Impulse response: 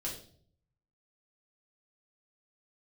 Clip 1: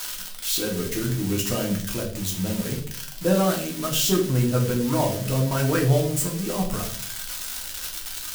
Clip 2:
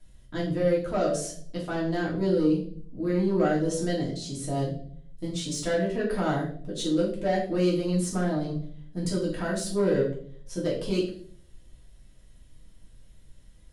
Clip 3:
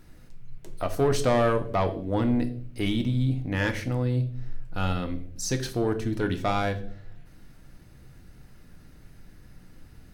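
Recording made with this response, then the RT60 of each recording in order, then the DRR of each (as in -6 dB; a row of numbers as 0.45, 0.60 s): 2; 0.55, 0.55, 0.60 s; -1.0, -5.0, 7.5 dB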